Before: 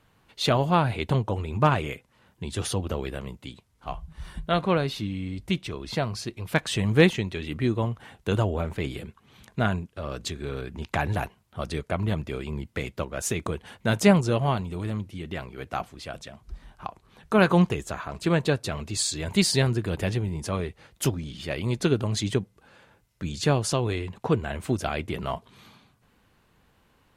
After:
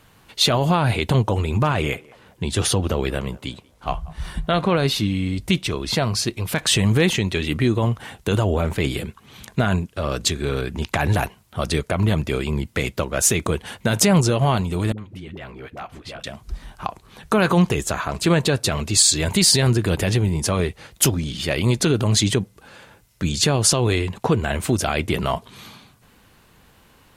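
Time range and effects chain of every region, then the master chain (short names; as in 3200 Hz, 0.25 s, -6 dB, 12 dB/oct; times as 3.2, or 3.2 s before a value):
1.74–4.75 high shelf 5400 Hz -5.5 dB + narrowing echo 0.188 s, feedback 42%, band-pass 760 Hz, level -20.5 dB
14.92–16.24 tone controls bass -1 dB, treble -12 dB + compressor 2.5:1, threshold -44 dBFS + dispersion highs, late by 61 ms, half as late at 410 Hz
whole clip: limiter -18 dBFS; high shelf 4000 Hz +6.5 dB; gain +9 dB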